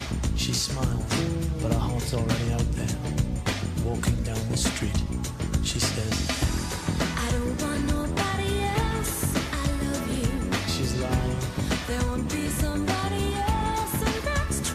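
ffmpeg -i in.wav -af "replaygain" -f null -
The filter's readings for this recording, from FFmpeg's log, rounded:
track_gain = +9.3 dB
track_peak = 0.215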